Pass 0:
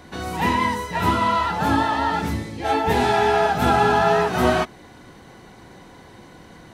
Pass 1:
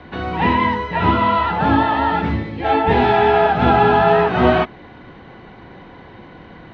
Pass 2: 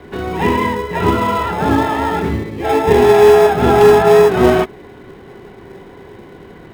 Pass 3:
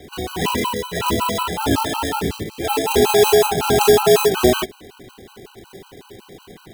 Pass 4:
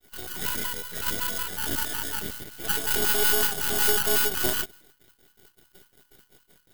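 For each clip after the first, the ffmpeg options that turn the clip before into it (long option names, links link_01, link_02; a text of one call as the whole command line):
ffmpeg -i in.wav -filter_complex "[0:a]acrossover=split=370|1200|1800[link_01][link_02][link_03][link_04];[link_03]alimiter=level_in=6dB:limit=-24dB:level=0:latency=1,volume=-6dB[link_05];[link_01][link_02][link_05][link_04]amix=inputs=4:normalize=0,lowpass=frequency=3300:width=0.5412,lowpass=frequency=3300:width=1.3066,volume=5dB" out.wav
ffmpeg -i in.wav -filter_complex "[0:a]equalizer=frequency=400:width=6.1:gain=14,asplit=2[link_01][link_02];[link_02]acrusher=samples=30:mix=1:aa=0.000001,volume=-12dB[link_03];[link_01][link_03]amix=inputs=2:normalize=0,aeval=exprs='1*(abs(mod(val(0)/1+3,4)-2)-1)':channel_layout=same,volume=-1dB" out.wav
ffmpeg -i in.wav -af "aexciter=amount=4.5:drive=4:freq=2800,afftfilt=real='re*gt(sin(2*PI*5.4*pts/sr)*(1-2*mod(floor(b*sr/1024/790),2)),0)':imag='im*gt(sin(2*PI*5.4*pts/sr)*(1-2*mod(floor(b*sr/1024/790),2)),0)':win_size=1024:overlap=0.75,volume=-2.5dB" out.wav
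ffmpeg -i in.wav -af "agate=range=-33dB:threshold=-35dB:ratio=3:detection=peak,aemphasis=mode=production:type=75fm,aeval=exprs='max(val(0),0)':channel_layout=same,volume=-11.5dB" out.wav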